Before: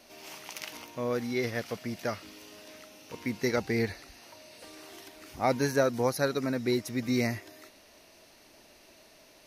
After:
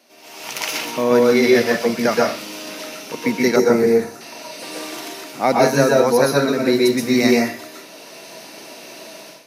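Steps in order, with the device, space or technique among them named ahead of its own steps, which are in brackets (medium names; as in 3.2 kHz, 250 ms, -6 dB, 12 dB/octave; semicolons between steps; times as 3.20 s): far laptop microphone (reverberation RT60 0.35 s, pre-delay 118 ms, DRR -1.5 dB; high-pass 150 Hz 24 dB/octave; level rider gain up to 15.5 dB); high-pass 110 Hz; 3.56–4.21 s: high-order bell 3 kHz -10 dB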